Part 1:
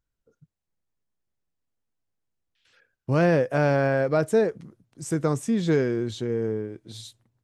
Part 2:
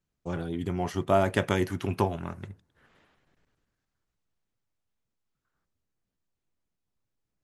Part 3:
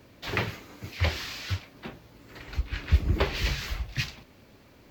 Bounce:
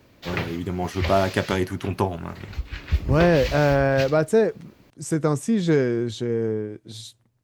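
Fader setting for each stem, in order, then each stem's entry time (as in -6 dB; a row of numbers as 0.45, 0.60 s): +2.5, +3.0, -0.5 dB; 0.00, 0.00, 0.00 s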